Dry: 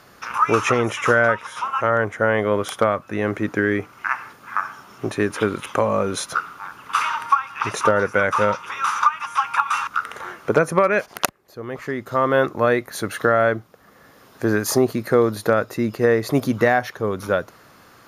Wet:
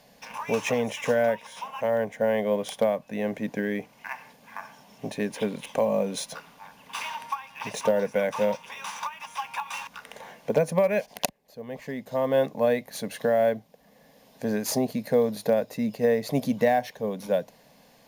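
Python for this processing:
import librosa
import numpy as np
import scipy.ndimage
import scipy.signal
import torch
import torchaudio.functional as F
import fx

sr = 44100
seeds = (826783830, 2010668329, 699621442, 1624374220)

p1 = fx.fixed_phaser(x, sr, hz=350.0, stages=6)
p2 = fx.sample_hold(p1, sr, seeds[0], rate_hz=14000.0, jitter_pct=0)
p3 = p1 + (p2 * librosa.db_to_amplitude(-9.5))
y = p3 * librosa.db_to_amplitude(-5.0)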